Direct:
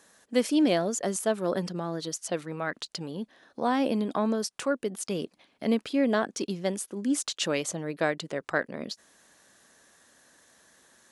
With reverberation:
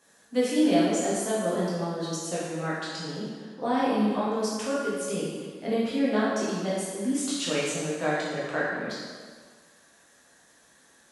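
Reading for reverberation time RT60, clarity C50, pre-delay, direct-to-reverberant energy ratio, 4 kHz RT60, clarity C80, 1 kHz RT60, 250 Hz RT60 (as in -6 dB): 1.6 s, -1.5 dB, 6 ms, -8.5 dB, 1.4 s, 1.0 dB, 1.7 s, 1.6 s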